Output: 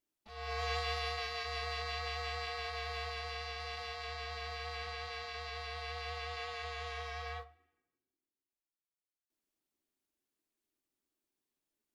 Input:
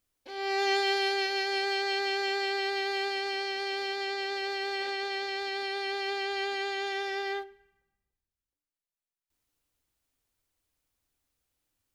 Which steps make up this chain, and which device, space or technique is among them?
alien voice (ring modulator 320 Hz; flange 0.77 Hz, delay 5.9 ms, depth 8.5 ms, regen -63%); trim -2 dB

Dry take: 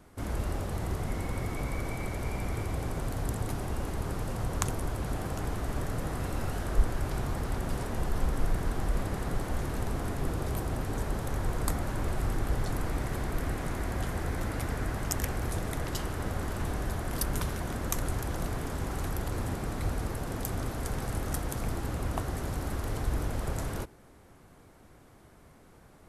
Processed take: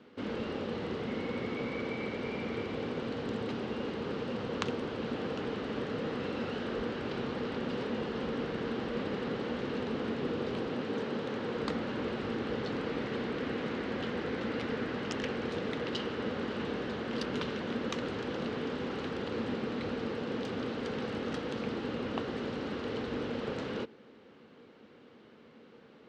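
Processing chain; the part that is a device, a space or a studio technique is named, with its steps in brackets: kitchen radio (cabinet simulation 210–4500 Hz, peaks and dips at 230 Hz +9 dB, 470 Hz +9 dB, 690 Hz -7 dB, 1 kHz -3 dB, 2.9 kHz +7 dB, 4 kHz +3 dB); 10.68–11.56 s: high-pass 110 Hz

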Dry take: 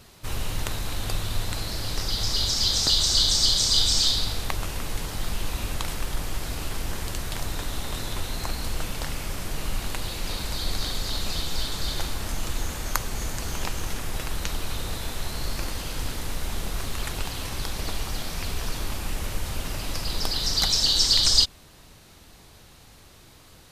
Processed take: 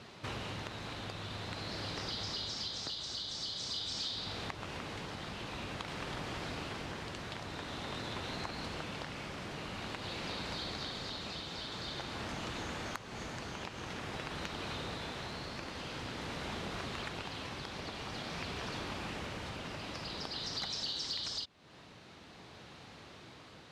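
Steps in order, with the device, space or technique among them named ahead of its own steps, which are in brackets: AM radio (band-pass 130–3800 Hz; compression 5:1, threshold -39 dBFS, peak gain reduction 17.5 dB; saturation -22.5 dBFS, distortion -31 dB; tremolo 0.48 Hz, depth 28%); trim +2 dB

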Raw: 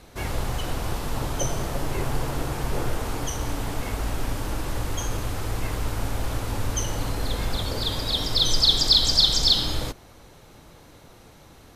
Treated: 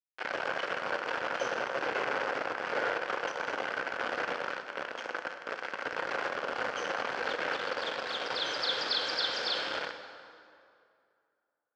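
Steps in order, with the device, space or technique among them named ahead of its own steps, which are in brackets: 4.51–5.86 s: high-pass 46 Hz 12 dB/octave; hand-held game console (bit crusher 4-bit; cabinet simulation 460–4100 Hz, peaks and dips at 520 Hz +8 dB, 1.5 kHz +10 dB, 3.8 kHz -9 dB); plate-style reverb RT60 2.4 s, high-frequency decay 0.7×, DRR 6.5 dB; trim -6.5 dB

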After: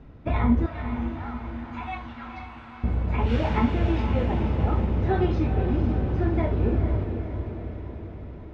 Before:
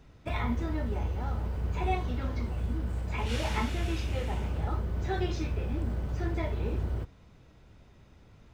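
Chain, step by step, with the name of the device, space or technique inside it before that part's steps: phone in a pocket (low-pass 3.9 kHz 12 dB/octave; peaking EQ 250 Hz +5 dB 0.43 oct; treble shelf 2.1 kHz -12 dB); 0.66–2.84 s: inverse Chebyshev high-pass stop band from 280 Hz, stop band 60 dB; echo that smears into a reverb 488 ms, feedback 60%, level -7.5 dB; trim +8 dB

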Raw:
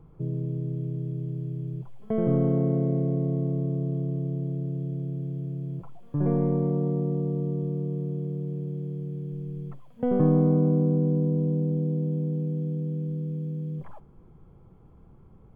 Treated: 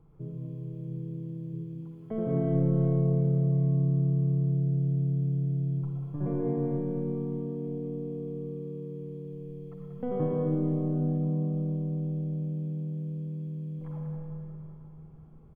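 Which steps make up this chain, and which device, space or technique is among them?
1.53–2.11 s: high-pass 890 Hz; cave (delay 189 ms -8.5 dB; reverberation RT60 3.2 s, pre-delay 49 ms, DRR -1.5 dB); trim -7.5 dB

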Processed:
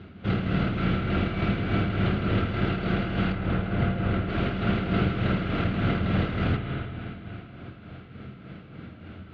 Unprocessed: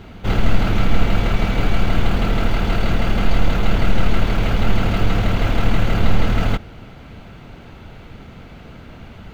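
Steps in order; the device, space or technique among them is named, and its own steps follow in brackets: combo amplifier with spring reverb and tremolo (spring tank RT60 3.1 s, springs 46/54/59 ms, chirp 25 ms, DRR 1 dB; tremolo 3.4 Hz, depth 49%; cabinet simulation 86–4100 Hz, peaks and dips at 87 Hz +8 dB, 130 Hz +4 dB, 190 Hz +6 dB, 320 Hz +6 dB, 900 Hz -8 dB, 1.4 kHz +4 dB); 3.32–4.29 s: treble shelf 3.2 kHz -10.5 dB; trim -7 dB

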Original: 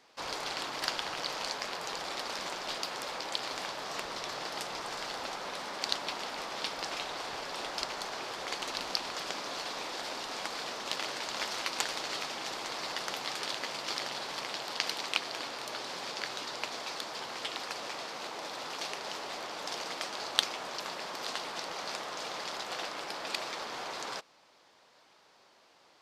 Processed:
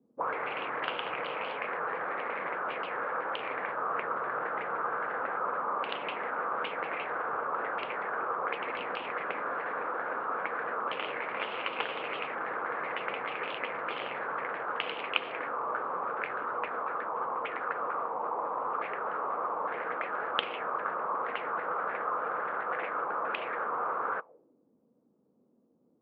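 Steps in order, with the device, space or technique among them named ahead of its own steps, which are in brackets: envelope filter bass rig (touch-sensitive low-pass 210–3000 Hz up, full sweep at -32.5 dBFS; cabinet simulation 86–2300 Hz, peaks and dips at 110 Hz -3 dB, 480 Hz +9 dB, 1.2 kHz +4 dB, 1.9 kHz -5 dB)

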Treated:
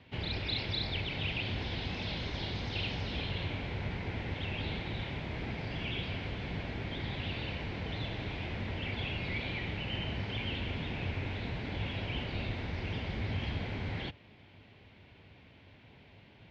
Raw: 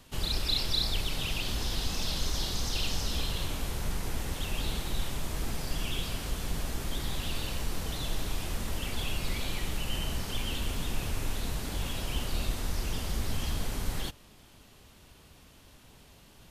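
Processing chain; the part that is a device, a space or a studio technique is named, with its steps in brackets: guitar cabinet (cabinet simulation 83–3900 Hz, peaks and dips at 99 Hz +8 dB, 1.2 kHz -8 dB, 2.2 kHz +8 dB); treble shelf 5.4 kHz -10.5 dB

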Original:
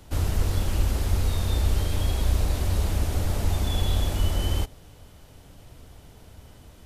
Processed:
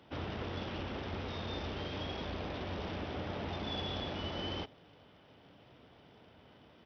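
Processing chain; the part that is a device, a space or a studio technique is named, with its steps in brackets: Bluetooth headset (high-pass 180 Hz 12 dB/octave; resampled via 8 kHz; trim -5 dB; SBC 64 kbps 44.1 kHz)

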